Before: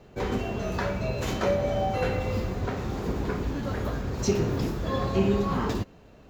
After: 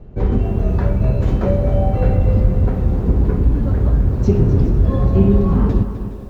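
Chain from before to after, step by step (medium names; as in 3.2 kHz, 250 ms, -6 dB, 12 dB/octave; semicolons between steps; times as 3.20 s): tilt EQ -4.5 dB/octave; thinning echo 417 ms, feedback 64%, high-pass 170 Hz, level -15.5 dB; bit-crushed delay 255 ms, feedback 35%, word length 8-bit, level -11 dB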